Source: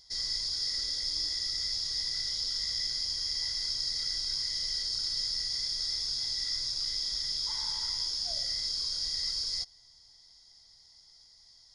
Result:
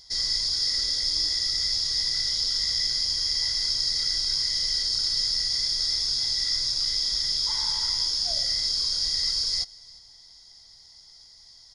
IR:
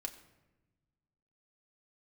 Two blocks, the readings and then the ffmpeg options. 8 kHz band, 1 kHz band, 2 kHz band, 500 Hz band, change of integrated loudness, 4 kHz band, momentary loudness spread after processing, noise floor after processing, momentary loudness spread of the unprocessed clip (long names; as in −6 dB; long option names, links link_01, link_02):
+7.0 dB, +7.0 dB, +7.0 dB, can't be measured, +7.0 dB, +7.0 dB, 1 LU, −52 dBFS, 1 LU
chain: -af "aecho=1:1:353:0.0631,volume=7dB"